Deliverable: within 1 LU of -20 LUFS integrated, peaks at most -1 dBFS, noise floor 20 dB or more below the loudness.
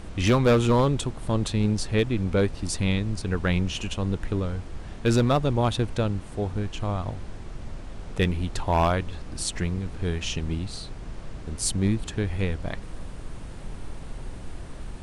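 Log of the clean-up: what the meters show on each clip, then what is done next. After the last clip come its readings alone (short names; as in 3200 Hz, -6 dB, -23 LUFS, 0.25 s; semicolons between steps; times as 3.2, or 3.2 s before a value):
clipped 0.7%; flat tops at -14.5 dBFS; noise floor -39 dBFS; noise floor target -46 dBFS; loudness -26.0 LUFS; peak -14.5 dBFS; loudness target -20.0 LUFS
-> clip repair -14.5 dBFS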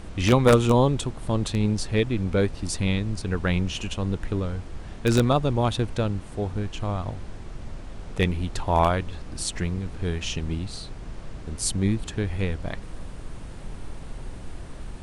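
clipped 0.0%; noise floor -39 dBFS; noise floor target -46 dBFS
-> noise print and reduce 7 dB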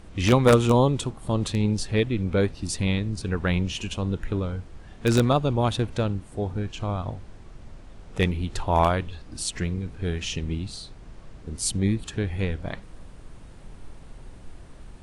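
noise floor -46 dBFS; loudness -25.5 LUFS; peak -5.5 dBFS; loudness target -20.0 LUFS
-> gain +5.5 dB; limiter -1 dBFS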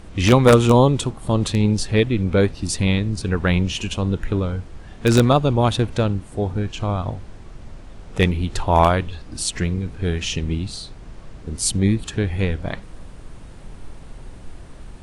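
loudness -20.0 LUFS; peak -1.0 dBFS; noise floor -40 dBFS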